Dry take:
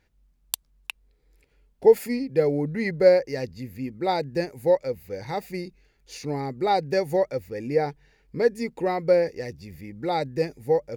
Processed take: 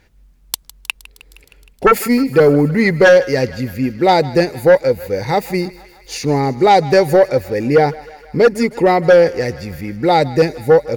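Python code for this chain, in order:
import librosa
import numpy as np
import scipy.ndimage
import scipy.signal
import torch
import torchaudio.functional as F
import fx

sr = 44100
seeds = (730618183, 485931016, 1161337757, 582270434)

y = fx.fold_sine(x, sr, drive_db=10, ceiling_db=-4.0)
y = fx.echo_thinned(y, sr, ms=156, feedback_pct=73, hz=520.0, wet_db=-18)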